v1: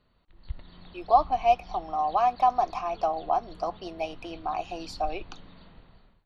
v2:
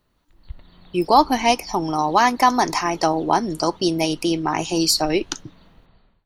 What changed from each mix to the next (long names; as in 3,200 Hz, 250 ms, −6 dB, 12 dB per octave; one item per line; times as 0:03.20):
speech: remove formant filter a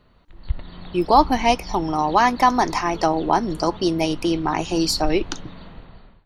background +11.5 dB
master: add high-shelf EQ 5,300 Hz −9 dB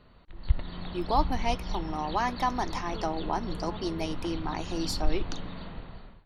speech −12.0 dB